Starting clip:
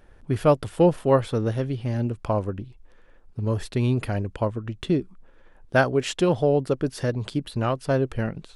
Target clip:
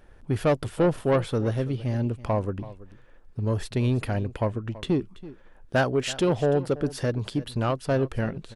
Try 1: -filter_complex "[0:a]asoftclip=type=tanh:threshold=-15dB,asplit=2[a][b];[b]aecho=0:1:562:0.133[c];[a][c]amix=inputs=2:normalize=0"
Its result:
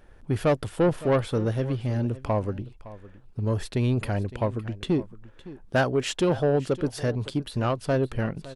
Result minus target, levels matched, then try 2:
echo 0.231 s late
-filter_complex "[0:a]asoftclip=type=tanh:threshold=-15dB,asplit=2[a][b];[b]aecho=0:1:331:0.133[c];[a][c]amix=inputs=2:normalize=0"

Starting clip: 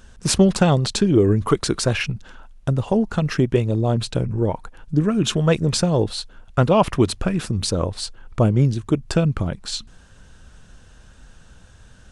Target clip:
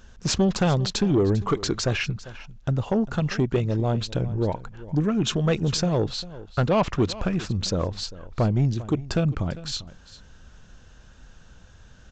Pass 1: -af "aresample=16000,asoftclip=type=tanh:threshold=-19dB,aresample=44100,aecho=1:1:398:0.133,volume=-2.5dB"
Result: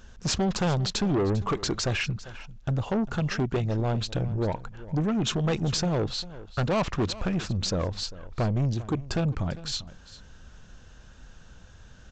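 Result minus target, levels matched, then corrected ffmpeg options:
soft clip: distortion +7 dB
-af "aresample=16000,asoftclip=type=tanh:threshold=-11.5dB,aresample=44100,aecho=1:1:398:0.133,volume=-2.5dB"

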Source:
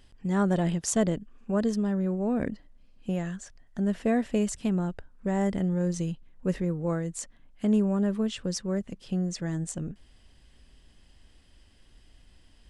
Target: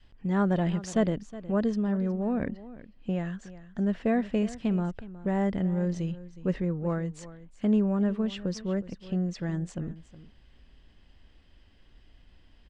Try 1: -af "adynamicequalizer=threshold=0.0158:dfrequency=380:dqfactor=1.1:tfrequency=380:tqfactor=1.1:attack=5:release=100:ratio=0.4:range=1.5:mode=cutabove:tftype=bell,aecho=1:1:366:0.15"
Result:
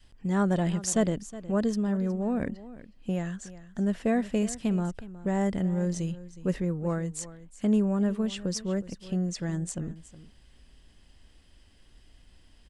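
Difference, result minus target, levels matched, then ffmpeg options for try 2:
4000 Hz band +3.5 dB
-af "adynamicequalizer=threshold=0.0158:dfrequency=380:dqfactor=1.1:tfrequency=380:tqfactor=1.1:attack=5:release=100:ratio=0.4:range=1.5:mode=cutabove:tftype=bell,lowpass=3.7k,aecho=1:1:366:0.15"

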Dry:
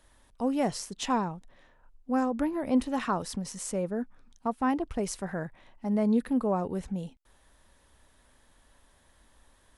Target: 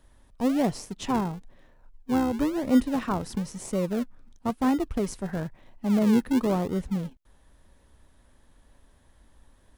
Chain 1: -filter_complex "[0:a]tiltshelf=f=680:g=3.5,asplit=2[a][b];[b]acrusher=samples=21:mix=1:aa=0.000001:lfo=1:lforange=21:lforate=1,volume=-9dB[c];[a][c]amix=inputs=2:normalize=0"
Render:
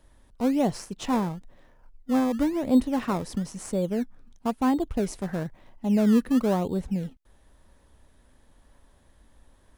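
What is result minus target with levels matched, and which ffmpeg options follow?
decimation with a swept rate: distortion -9 dB
-filter_complex "[0:a]tiltshelf=f=680:g=3.5,asplit=2[a][b];[b]acrusher=samples=51:mix=1:aa=0.000001:lfo=1:lforange=51:lforate=1,volume=-9dB[c];[a][c]amix=inputs=2:normalize=0"

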